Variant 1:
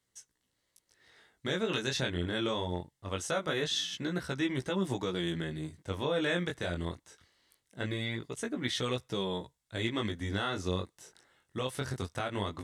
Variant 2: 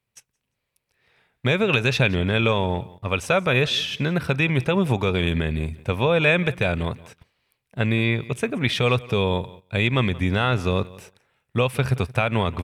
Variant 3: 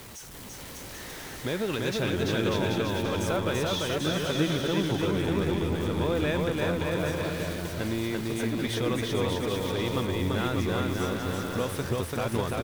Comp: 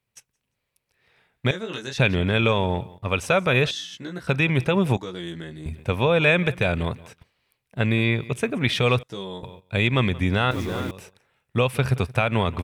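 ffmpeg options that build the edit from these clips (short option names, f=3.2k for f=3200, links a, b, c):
-filter_complex "[0:a]asplit=4[a][b][c][d];[1:a]asplit=6[e][f][g][h][i][j];[e]atrim=end=1.512[k];[a]atrim=start=1.508:end=1.982[l];[f]atrim=start=1.978:end=3.712[m];[b]atrim=start=3.708:end=4.272[n];[g]atrim=start=4.268:end=4.972[o];[c]atrim=start=4.968:end=5.662[p];[h]atrim=start=5.658:end=9.032[q];[d]atrim=start=9.028:end=9.432[r];[i]atrim=start=9.428:end=10.512[s];[2:a]atrim=start=10.508:end=10.912[t];[j]atrim=start=10.908[u];[k][l]acrossfade=d=0.004:c1=hsin:c2=hsin[v];[v][m]acrossfade=d=0.004:c1=hsin:c2=hsin[w];[w][n]acrossfade=d=0.004:c1=hsin:c2=hsin[x];[x][o]acrossfade=d=0.004:c1=hsin:c2=hsin[y];[y][p]acrossfade=d=0.004:c1=hsin:c2=hsin[z];[z][q]acrossfade=d=0.004:c1=hsin:c2=hsin[aa];[aa][r]acrossfade=d=0.004:c1=hsin:c2=hsin[ab];[ab][s]acrossfade=d=0.004:c1=hsin:c2=hsin[ac];[ac][t]acrossfade=d=0.004:c1=hsin:c2=hsin[ad];[ad][u]acrossfade=d=0.004:c1=hsin:c2=hsin"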